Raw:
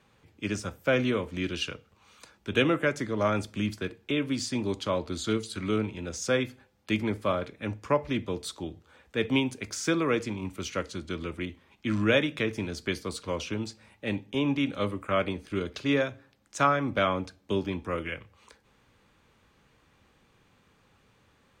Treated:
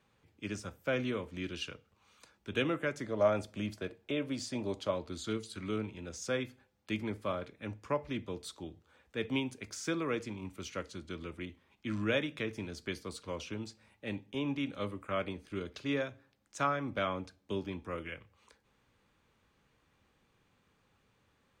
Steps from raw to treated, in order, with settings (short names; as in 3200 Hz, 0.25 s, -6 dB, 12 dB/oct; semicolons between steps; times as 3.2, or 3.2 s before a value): 3.04–4.91 bell 620 Hz +9.5 dB 0.68 oct; gain -8 dB